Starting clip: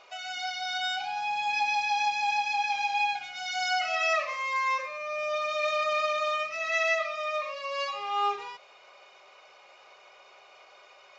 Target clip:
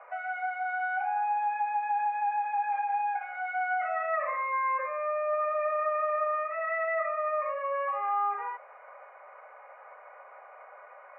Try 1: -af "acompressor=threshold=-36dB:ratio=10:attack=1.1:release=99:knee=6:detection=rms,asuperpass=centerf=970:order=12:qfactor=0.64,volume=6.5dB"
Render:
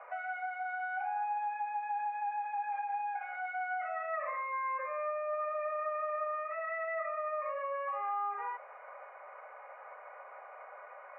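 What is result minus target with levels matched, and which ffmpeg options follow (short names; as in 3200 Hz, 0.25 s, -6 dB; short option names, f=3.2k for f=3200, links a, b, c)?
compressor: peak gain reduction +7 dB
-af "acompressor=threshold=-28.5dB:ratio=10:attack=1.1:release=99:knee=6:detection=rms,asuperpass=centerf=970:order=12:qfactor=0.64,volume=6.5dB"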